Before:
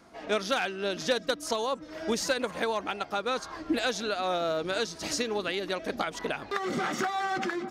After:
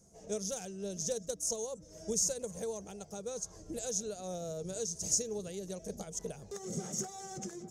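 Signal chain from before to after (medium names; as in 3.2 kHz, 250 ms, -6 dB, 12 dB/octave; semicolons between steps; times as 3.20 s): FFT filter 190 Hz 0 dB, 280 Hz -20 dB, 440 Hz -5 dB, 1.2 kHz -26 dB, 2.2 kHz -25 dB, 4.3 kHz -17 dB, 6.4 kHz +8 dB, 14 kHz -3 dB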